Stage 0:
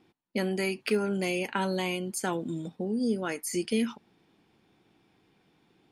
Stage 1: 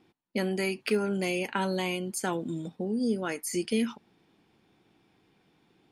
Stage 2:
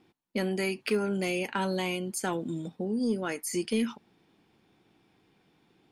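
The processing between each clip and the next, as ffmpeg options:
-af anull
-af "asoftclip=type=tanh:threshold=-15.5dB"

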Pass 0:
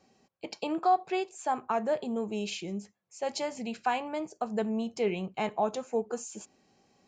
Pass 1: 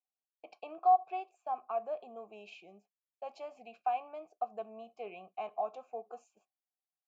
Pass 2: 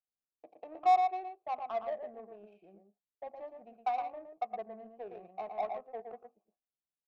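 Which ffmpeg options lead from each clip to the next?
-filter_complex "[0:a]asplit=3[a][b][c];[a]bandpass=f=730:t=q:w=8,volume=0dB[d];[b]bandpass=f=1.09k:t=q:w=8,volume=-6dB[e];[c]bandpass=f=2.44k:t=q:w=8,volume=-9dB[f];[d][e][f]amix=inputs=3:normalize=0,agate=range=-33dB:threshold=-55dB:ratio=3:detection=peak"
-af "aecho=1:1:88|115|143:0.1|0.562|0.1,adynamicsmooth=sensitivity=3:basefreq=610"

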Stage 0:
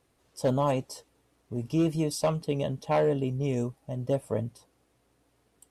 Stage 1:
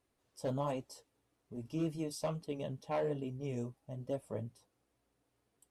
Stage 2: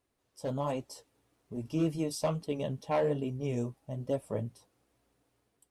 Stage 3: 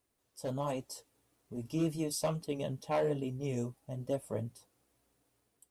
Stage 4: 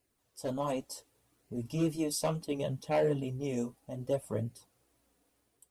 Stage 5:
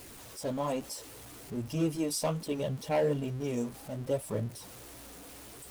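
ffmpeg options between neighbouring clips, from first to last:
-af "flanger=delay=3:depth=7.4:regen=-48:speed=1.2:shape=sinusoidal,volume=-6.5dB"
-af "dynaudnorm=f=280:g=5:m=6dB"
-af "highshelf=f=6.4k:g=9,volume=-2.5dB"
-af "flanger=delay=0.4:depth=3.8:regen=-42:speed=0.67:shape=sinusoidal,volume=6dB"
-af "aeval=exprs='val(0)+0.5*0.00708*sgn(val(0))':c=same"

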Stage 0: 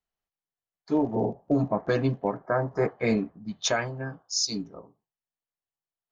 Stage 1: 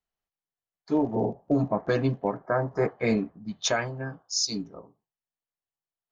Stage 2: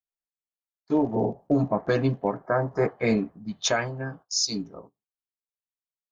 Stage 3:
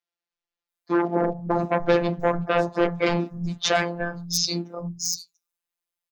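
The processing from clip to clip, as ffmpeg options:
-af anull
-af "agate=range=-17dB:threshold=-48dB:ratio=16:detection=peak,volume=1.5dB"
-filter_complex "[0:a]aeval=exprs='0.282*sin(PI/2*2.24*val(0)/0.282)':c=same,afftfilt=real='hypot(re,im)*cos(PI*b)':imag='0':win_size=1024:overlap=0.75,acrossover=split=170|6000[a][b][c];[a]adelay=300[d];[c]adelay=690[e];[d][b][e]amix=inputs=3:normalize=0"

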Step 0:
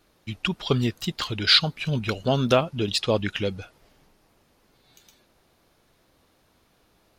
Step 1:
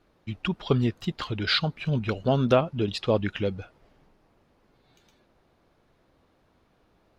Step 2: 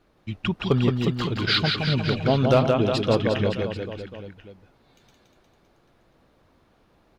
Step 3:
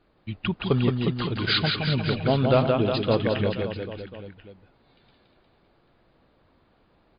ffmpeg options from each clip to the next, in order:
-af "lowpass=f=1.6k:p=1"
-af "aecho=1:1:170|357|562.7|789|1038:0.631|0.398|0.251|0.158|0.1,volume=11.5dB,asoftclip=hard,volume=-11.5dB,volume=2dB"
-af "volume=-1dB" -ar 11025 -c:a libmp3lame -b:a 40k

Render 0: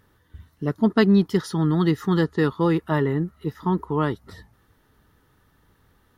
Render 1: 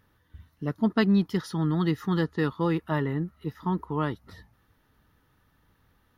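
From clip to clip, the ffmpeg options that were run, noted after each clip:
-af "equalizer=f=400:t=o:w=0.33:g=-5,equalizer=f=2.5k:t=o:w=0.33:g=3,equalizer=f=8k:t=o:w=0.33:g=-8,volume=-4.5dB"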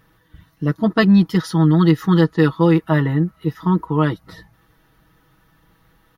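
-af "aecho=1:1:6.2:0.73,volume=7.5dB"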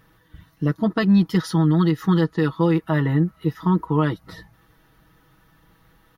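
-af "alimiter=limit=-9.5dB:level=0:latency=1:release=244"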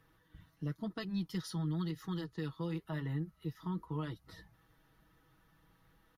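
-filter_complex "[0:a]acrossover=split=120|3000[a][b][c];[b]acompressor=threshold=-44dB:ratio=1.5[d];[a][d][c]amix=inputs=3:normalize=0,flanger=delay=2.4:depth=5.3:regen=-72:speed=0.95:shape=sinusoidal,aresample=32000,aresample=44100,volume=-7dB"

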